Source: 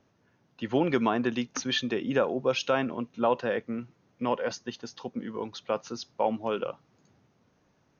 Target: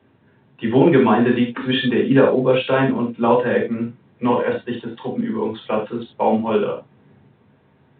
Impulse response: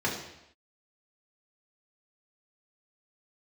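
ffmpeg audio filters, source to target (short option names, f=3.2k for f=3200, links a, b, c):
-filter_complex "[1:a]atrim=start_sample=2205,atrim=end_sample=4410[a];[0:a][a]afir=irnorm=-1:irlink=0" -ar 8000 -c:a pcm_alaw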